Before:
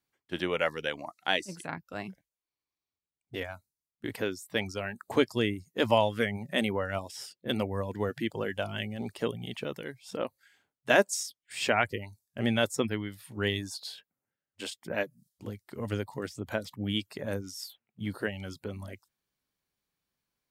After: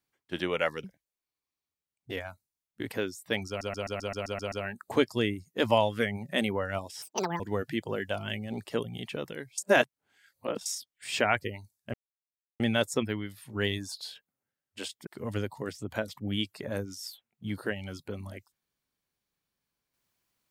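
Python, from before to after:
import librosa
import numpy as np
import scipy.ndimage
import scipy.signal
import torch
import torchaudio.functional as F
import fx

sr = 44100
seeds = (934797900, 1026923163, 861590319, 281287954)

y = fx.edit(x, sr, fx.cut(start_s=0.84, length_s=1.24),
    fx.stutter(start_s=4.72, slice_s=0.13, count=9),
    fx.speed_span(start_s=7.22, length_s=0.66, speed=1.75),
    fx.reverse_span(start_s=10.06, length_s=1.08),
    fx.insert_silence(at_s=12.42, length_s=0.66),
    fx.cut(start_s=14.89, length_s=0.74), tone=tone)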